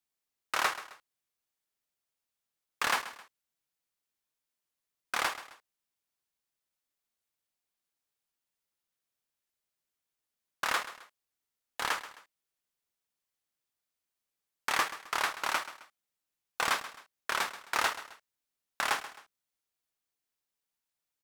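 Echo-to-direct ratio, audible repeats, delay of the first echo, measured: −14.0 dB, 2, 132 ms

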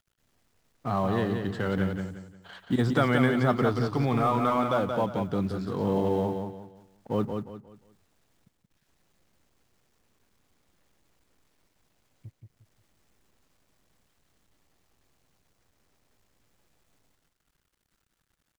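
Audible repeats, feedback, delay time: 3, 32%, 177 ms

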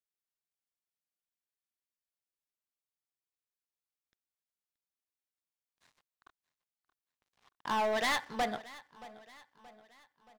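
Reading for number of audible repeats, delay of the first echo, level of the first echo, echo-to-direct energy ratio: 3, 626 ms, −19.0 dB, −18.0 dB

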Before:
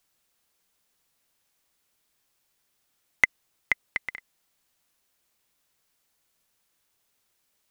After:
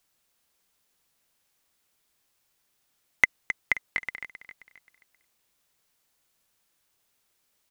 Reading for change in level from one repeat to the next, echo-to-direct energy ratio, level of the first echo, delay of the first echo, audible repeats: −8.0 dB, −10.0 dB, −11.0 dB, 265 ms, 4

